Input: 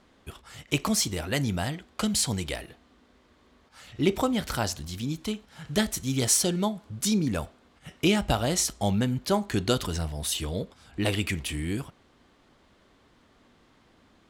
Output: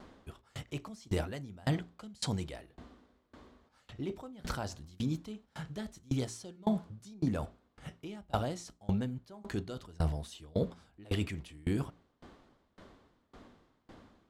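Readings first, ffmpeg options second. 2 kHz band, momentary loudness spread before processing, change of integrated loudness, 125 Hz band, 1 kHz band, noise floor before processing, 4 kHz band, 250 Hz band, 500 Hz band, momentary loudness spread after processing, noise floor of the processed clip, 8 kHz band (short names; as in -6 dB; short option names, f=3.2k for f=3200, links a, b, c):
-13.0 dB, 11 LU, -10.0 dB, -6.0 dB, -9.5 dB, -62 dBFS, -15.5 dB, -8.5 dB, -9.5 dB, 14 LU, -73 dBFS, -21.5 dB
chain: -filter_complex "[0:a]asplit=2[a][b];[b]asoftclip=type=hard:threshold=-23dB,volume=-8dB[c];[a][c]amix=inputs=2:normalize=0,equalizer=f=2.4k:w=0.96:g=-5,areverse,acompressor=threshold=-32dB:ratio=12,areverse,aemphasis=mode=reproduction:type=cd,bandreject=f=57.55:t=h:w=4,bandreject=f=115.1:t=h:w=4,bandreject=f=172.65:t=h:w=4,bandreject=f=230.2:t=h:w=4,bandreject=f=287.75:t=h:w=4,bandreject=f=345.3:t=h:w=4,bandreject=f=402.85:t=h:w=4,acrossover=split=9100[d][e];[e]acompressor=threshold=-58dB:ratio=4:attack=1:release=60[f];[d][f]amix=inputs=2:normalize=0,aeval=exprs='val(0)*pow(10,-28*if(lt(mod(1.8*n/s,1),2*abs(1.8)/1000),1-mod(1.8*n/s,1)/(2*abs(1.8)/1000),(mod(1.8*n/s,1)-2*abs(1.8)/1000)/(1-2*abs(1.8)/1000))/20)':c=same,volume=7.5dB"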